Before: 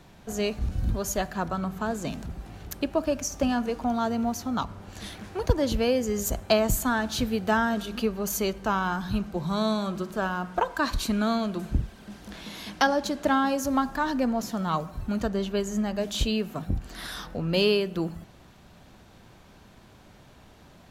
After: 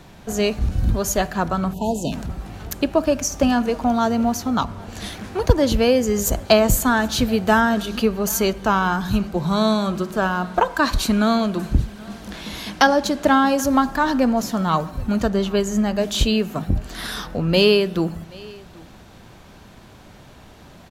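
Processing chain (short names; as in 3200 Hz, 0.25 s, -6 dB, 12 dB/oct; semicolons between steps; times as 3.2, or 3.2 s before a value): echo 0.78 s -23.5 dB; spectral delete 1.73–2.12, 1000–2500 Hz; gain +7.5 dB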